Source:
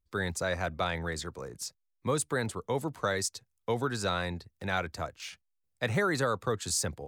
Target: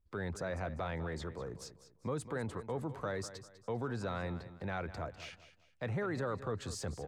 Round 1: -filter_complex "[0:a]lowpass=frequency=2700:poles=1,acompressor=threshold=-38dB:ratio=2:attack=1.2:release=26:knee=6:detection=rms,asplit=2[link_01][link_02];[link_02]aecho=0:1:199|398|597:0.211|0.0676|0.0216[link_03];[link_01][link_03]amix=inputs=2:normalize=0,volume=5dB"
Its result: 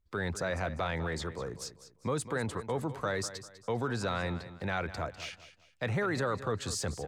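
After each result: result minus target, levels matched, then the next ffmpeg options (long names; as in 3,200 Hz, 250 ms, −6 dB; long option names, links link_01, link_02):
downward compressor: peak gain reduction −4 dB; 2,000 Hz band +2.5 dB
-filter_complex "[0:a]lowpass=frequency=2700:poles=1,acompressor=threshold=-47dB:ratio=2:attack=1.2:release=26:knee=6:detection=rms,asplit=2[link_01][link_02];[link_02]aecho=0:1:199|398|597:0.211|0.0676|0.0216[link_03];[link_01][link_03]amix=inputs=2:normalize=0,volume=5dB"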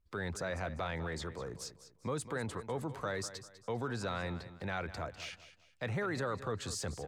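2,000 Hz band +2.5 dB
-filter_complex "[0:a]lowpass=frequency=1000:poles=1,acompressor=threshold=-47dB:ratio=2:attack=1.2:release=26:knee=6:detection=rms,asplit=2[link_01][link_02];[link_02]aecho=0:1:199|398|597:0.211|0.0676|0.0216[link_03];[link_01][link_03]amix=inputs=2:normalize=0,volume=5dB"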